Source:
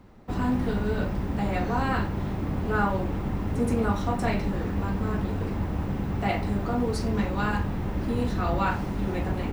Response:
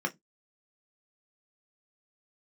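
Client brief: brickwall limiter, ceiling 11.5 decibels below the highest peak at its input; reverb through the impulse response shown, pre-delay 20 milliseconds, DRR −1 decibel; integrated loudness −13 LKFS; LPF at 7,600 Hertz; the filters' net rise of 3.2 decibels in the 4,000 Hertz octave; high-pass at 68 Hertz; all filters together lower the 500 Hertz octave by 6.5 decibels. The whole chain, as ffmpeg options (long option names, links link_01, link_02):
-filter_complex "[0:a]highpass=68,lowpass=7600,equalizer=frequency=500:width_type=o:gain=-8.5,equalizer=frequency=4000:width_type=o:gain=4.5,alimiter=level_in=1dB:limit=-24dB:level=0:latency=1,volume=-1dB,asplit=2[link_01][link_02];[1:a]atrim=start_sample=2205,adelay=20[link_03];[link_02][link_03]afir=irnorm=-1:irlink=0,volume=-5.5dB[link_04];[link_01][link_04]amix=inputs=2:normalize=0,volume=16.5dB"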